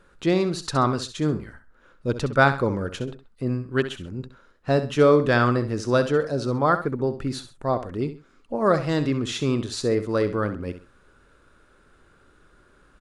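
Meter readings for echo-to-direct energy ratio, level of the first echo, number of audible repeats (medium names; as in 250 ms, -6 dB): -11.0 dB, -11.5 dB, 2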